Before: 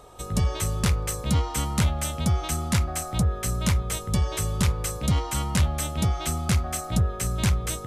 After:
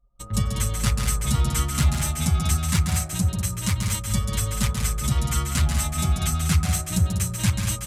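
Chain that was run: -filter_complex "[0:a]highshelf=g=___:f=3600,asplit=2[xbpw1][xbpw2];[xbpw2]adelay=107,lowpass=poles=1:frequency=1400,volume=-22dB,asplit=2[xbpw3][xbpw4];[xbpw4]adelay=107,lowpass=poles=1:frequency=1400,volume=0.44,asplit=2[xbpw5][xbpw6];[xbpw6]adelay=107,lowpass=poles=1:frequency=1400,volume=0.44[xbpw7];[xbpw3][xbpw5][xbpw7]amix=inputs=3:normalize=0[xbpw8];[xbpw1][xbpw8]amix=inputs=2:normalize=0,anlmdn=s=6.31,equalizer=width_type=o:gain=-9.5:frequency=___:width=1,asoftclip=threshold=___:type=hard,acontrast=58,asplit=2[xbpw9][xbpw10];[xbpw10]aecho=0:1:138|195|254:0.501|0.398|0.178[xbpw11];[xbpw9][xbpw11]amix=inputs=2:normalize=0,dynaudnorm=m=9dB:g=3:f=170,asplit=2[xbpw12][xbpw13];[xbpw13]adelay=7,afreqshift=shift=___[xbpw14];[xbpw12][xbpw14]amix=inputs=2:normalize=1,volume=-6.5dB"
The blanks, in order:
2.5, 460, -13dB, 0.26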